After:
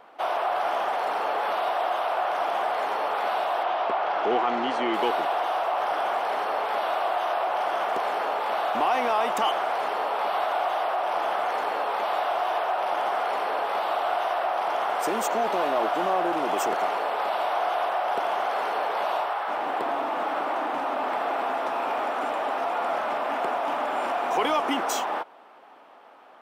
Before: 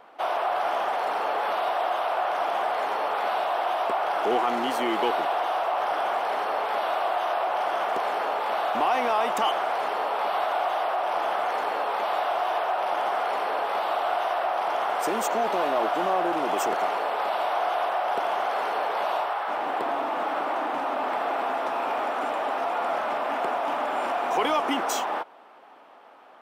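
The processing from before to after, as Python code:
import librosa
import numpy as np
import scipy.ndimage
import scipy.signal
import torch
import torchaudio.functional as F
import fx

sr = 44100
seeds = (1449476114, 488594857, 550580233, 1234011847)

y = fx.lowpass(x, sr, hz=4400.0, slope=12, at=(3.63, 4.94))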